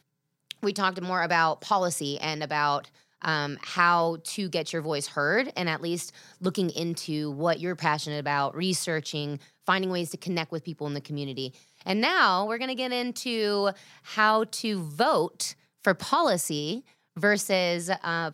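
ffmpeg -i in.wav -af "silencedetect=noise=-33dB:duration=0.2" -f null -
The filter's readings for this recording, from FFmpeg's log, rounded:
silence_start: 0.00
silence_end: 0.51 | silence_duration: 0.51
silence_start: 2.85
silence_end: 3.22 | silence_duration: 0.37
silence_start: 6.09
silence_end: 6.43 | silence_duration: 0.34
silence_start: 9.37
silence_end: 9.68 | silence_duration: 0.32
silence_start: 11.47
silence_end: 11.87 | silence_duration: 0.39
silence_start: 13.71
silence_end: 14.09 | silence_duration: 0.38
silence_start: 15.52
silence_end: 15.85 | silence_duration: 0.33
silence_start: 16.79
silence_end: 17.17 | silence_duration: 0.38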